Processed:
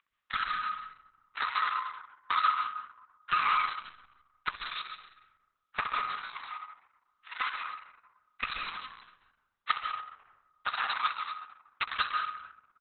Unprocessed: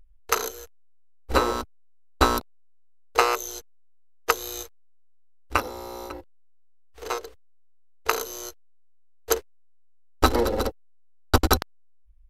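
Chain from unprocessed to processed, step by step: comb filter that takes the minimum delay 3.8 ms; elliptic band-pass 1.2–5.7 kHz, stop band 40 dB; treble shelf 2.9 kHz -8.5 dB; in parallel at 0 dB: peak limiter -20.5 dBFS, peak gain reduction 10.5 dB; on the sum: compression 2:1, threshold -31 dBFS, peak gain reduction 8 dB; hard clipper -23 dBFS, distortion -14 dB; phaser 0.36 Hz, delay 2.2 ms, feedback 47%; feedback delay 63 ms, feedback 41%, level -9 dB; reverberation RT60 1.1 s, pre-delay 100 ms, DRR 5.5 dB; speed mistake 25 fps video run at 24 fps; trim +2.5 dB; Opus 6 kbps 48 kHz

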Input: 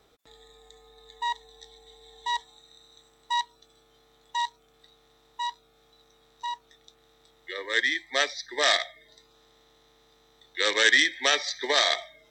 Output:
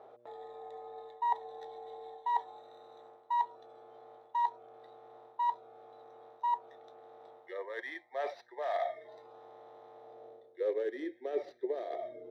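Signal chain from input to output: median filter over 5 samples; in parallel at -10.5 dB: sample-rate reducer 7.5 kHz, jitter 0%; on the sum: mains buzz 120 Hz, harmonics 5, -63 dBFS -6 dB/octave; high-order bell 510 Hz +9 dB 1.3 oct; reverse; compression 8:1, threshold -35 dBFS, peak gain reduction 21.5 dB; reverse; band-pass sweep 860 Hz -> 360 Hz, 9.92–10.94 s; trim +8 dB

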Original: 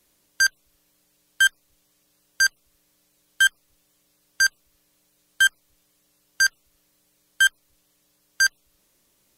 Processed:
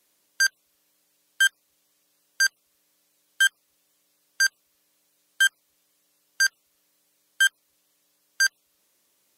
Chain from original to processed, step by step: high-pass 410 Hz 6 dB/octave; trim -2 dB

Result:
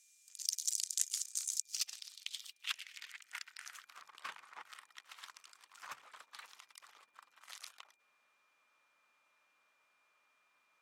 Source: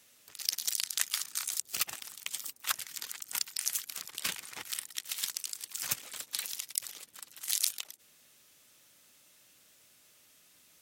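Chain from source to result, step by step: band-pass sweep 7 kHz -> 1.1 kHz, 1.45–4.03 s; whistle 2.4 kHz -77 dBFS; hum notches 60/120/180 Hz; trim +1 dB

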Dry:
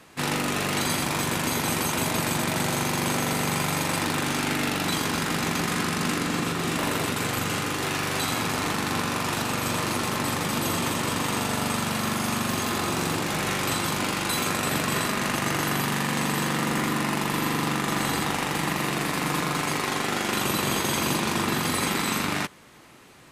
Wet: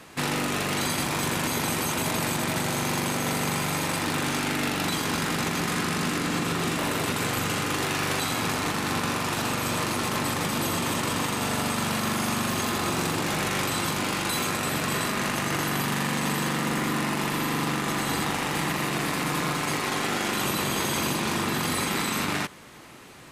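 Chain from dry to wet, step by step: peak limiter -21.5 dBFS, peak gain reduction 9 dB; trim +4 dB

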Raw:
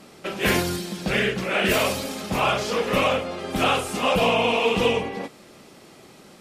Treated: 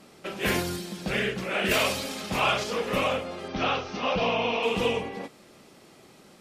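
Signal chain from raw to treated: 1.71–2.64 s: peaking EQ 3.2 kHz +5 dB 2.8 oct; 3.48–4.63 s: Chebyshev low-pass 6 kHz, order 6; trim -5 dB

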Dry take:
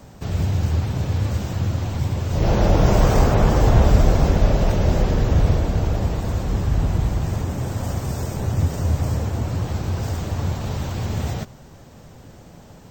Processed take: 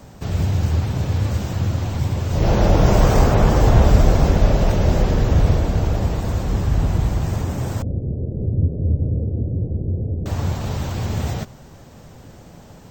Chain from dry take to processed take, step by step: 7.82–10.26 s: steep low-pass 510 Hz 36 dB/octave; trim +1.5 dB

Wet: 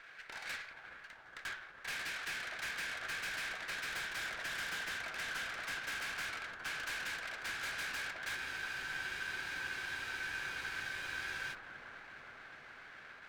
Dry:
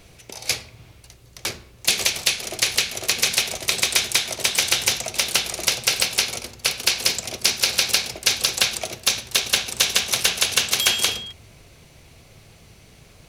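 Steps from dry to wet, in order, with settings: tilt EQ -4 dB/octave; in parallel at -2 dB: compressor with a negative ratio -34 dBFS; on the sum: ladder band-pass 1.7 kHz, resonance 75%; valve stage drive 46 dB, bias 0.35; on a send: bucket-brigade echo 415 ms, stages 4096, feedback 80%, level -8 dB; on the sum: spectral freeze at 8.38 s, 3.16 s; sliding maximum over 3 samples; trim +8 dB

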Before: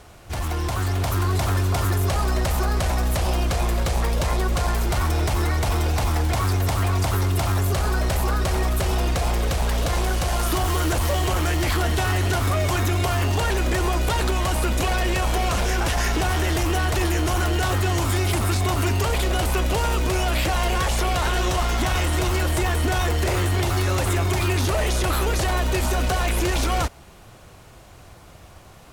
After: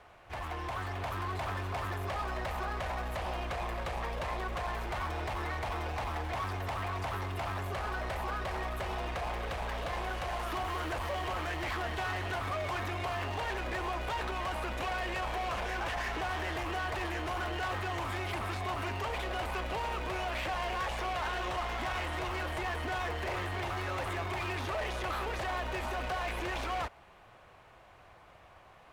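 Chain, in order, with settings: three-band isolator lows -12 dB, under 530 Hz, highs -18 dB, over 3 kHz; band-stop 1.4 kHz, Q 23; in parallel at -5 dB: wavefolder -28.5 dBFS; on the sum: trim -8.5 dB

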